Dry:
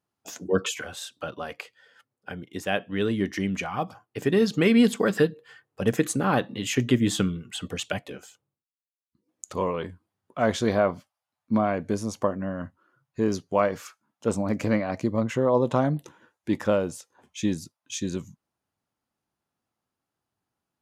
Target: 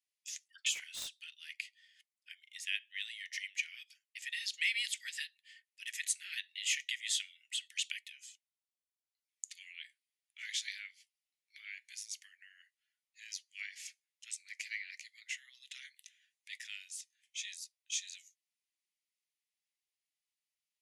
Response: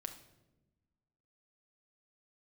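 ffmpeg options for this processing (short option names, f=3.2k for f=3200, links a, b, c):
-filter_complex "[0:a]asuperpass=centerf=5200:order=20:qfactor=0.53,asplit=3[a][b][c];[a]afade=t=out:st=0.73:d=0.02[d];[b]aeval=exprs='0.0596*(cos(1*acos(clip(val(0)/0.0596,-1,1)))-cos(1*PI/2))+0.0299*(cos(3*acos(clip(val(0)/0.0596,-1,1)))-cos(3*PI/2))+0.0211*(cos(5*acos(clip(val(0)/0.0596,-1,1)))-cos(5*PI/2))':c=same,afade=t=in:st=0.73:d=0.02,afade=t=out:st=1.47:d=0.02[e];[c]afade=t=in:st=1.47:d=0.02[f];[d][e][f]amix=inputs=3:normalize=0,volume=-2.5dB"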